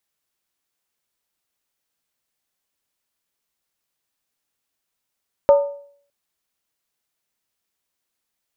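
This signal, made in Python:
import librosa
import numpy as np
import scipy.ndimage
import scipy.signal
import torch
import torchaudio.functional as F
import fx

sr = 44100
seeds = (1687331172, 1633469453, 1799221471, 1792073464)

y = fx.strike_skin(sr, length_s=0.61, level_db=-6, hz=568.0, decay_s=0.56, tilt_db=11.0, modes=5)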